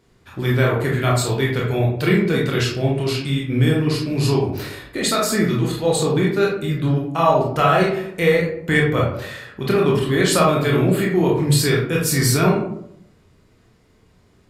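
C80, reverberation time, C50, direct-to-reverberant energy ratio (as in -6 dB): 7.5 dB, 0.70 s, 3.0 dB, -3.5 dB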